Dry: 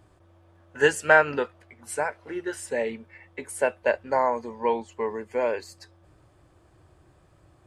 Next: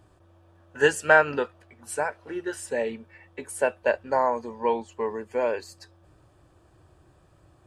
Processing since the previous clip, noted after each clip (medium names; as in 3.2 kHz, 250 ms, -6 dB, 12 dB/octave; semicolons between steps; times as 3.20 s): band-stop 2.1 kHz, Q 8.3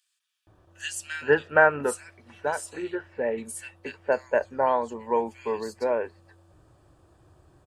bands offset in time highs, lows 470 ms, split 2.4 kHz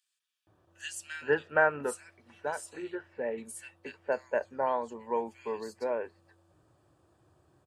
high-pass 100 Hz; trim -6.5 dB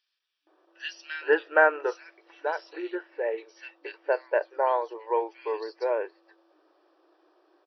FFT band-pass 300–5900 Hz; trim +5 dB